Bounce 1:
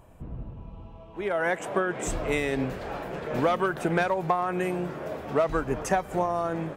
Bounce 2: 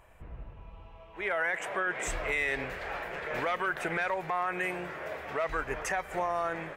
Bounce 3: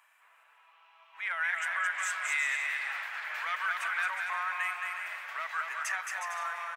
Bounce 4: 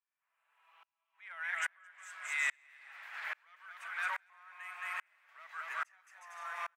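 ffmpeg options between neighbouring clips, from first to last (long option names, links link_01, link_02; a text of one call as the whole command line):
ffmpeg -i in.wav -af "equalizer=frequency=125:width_type=o:width=1:gain=-7,equalizer=frequency=250:width_type=o:width=1:gain=-10,equalizer=frequency=2000:width_type=o:width=1:gain=11,alimiter=limit=-17.5dB:level=0:latency=1:release=12,volume=-3.5dB" out.wav
ffmpeg -i in.wav -af "highpass=frequency=1100:width=0.5412,highpass=frequency=1100:width=1.3066,aecho=1:1:220|363|456|516.4|555.6:0.631|0.398|0.251|0.158|0.1" out.wav
ffmpeg -i in.wav -af "aeval=exprs='val(0)*pow(10,-37*if(lt(mod(-1.2*n/s,1),2*abs(-1.2)/1000),1-mod(-1.2*n/s,1)/(2*abs(-1.2)/1000),(mod(-1.2*n/s,1)-2*abs(-1.2)/1000)/(1-2*abs(-1.2)/1000))/20)':channel_layout=same,volume=1dB" out.wav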